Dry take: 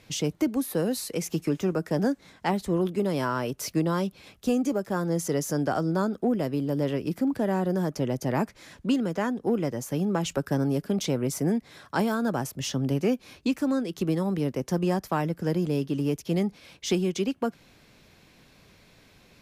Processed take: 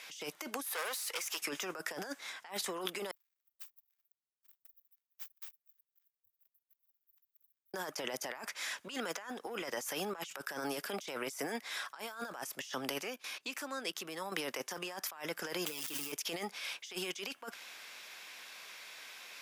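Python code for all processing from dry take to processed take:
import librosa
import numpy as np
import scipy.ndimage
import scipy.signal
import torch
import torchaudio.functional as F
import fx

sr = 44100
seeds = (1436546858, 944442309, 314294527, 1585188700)

y = fx.chain(x, sr, fx.highpass(hz=530.0, slope=12),
    fx.tube_stage(drive_db=38.0, bias=0.4), at=(0.65, 1.42))
y = fx.chain(y, sr, fx.lower_of_two(delay_ms=4.3),
    fx.cheby2_bandstop(low_hz=190.0, high_hz=5200.0, order=4, stop_db=80),
    fx.power_curve(exponent=2.0), at=(3.11, 7.74))
y = fx.chain(y, sr, fx.low_shelf(hz=160.0, db=7.0),
    fx.level_steps(step_db=17), at=(13.01, 14.32))
y = fx.chain(y, sr, fx.crossing_spikes(level_db=-29.0),
    fx.comb(ms=6.1, depth=0.78), at=(15.66, 16.12))
y = scipy.signal.sosfilt(scipy.signal.butter(2, 1100.0, 'highpass', fs=sr, output='sos'), y)
y = fx.notch(y, sr, hz=4200.0, q=14.0)
y = fx.over_compress(y, sr, threshold_db=-46.0, ratio=-1.0)
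y = y * 10.0 ** (5.0 / 20.0)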